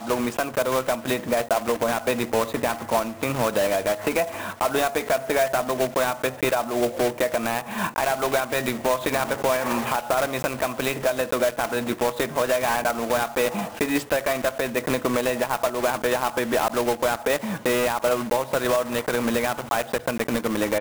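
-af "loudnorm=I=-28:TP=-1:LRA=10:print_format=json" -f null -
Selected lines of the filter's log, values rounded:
"input_i" : "-24.2",
"input_tp" : "-8.3",
"input_lra" : "0.7",
"input_thresh" : "-34.2",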